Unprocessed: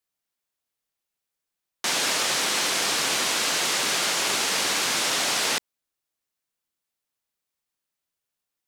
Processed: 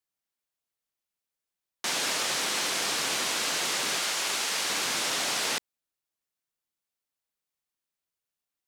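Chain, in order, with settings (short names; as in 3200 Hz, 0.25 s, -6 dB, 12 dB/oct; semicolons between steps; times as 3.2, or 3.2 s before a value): 3.99–4.7 low shelf 450 Hz -7 dB; gain -4.5 dB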